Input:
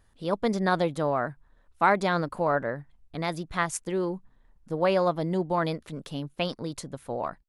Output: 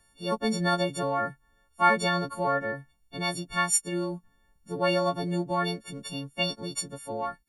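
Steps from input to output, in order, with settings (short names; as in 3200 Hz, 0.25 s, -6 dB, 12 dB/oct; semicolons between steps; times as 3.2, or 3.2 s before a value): frequency quantiser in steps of 4 st; bell 200 Hz +4 dB 0.42 oct; gain -3 dB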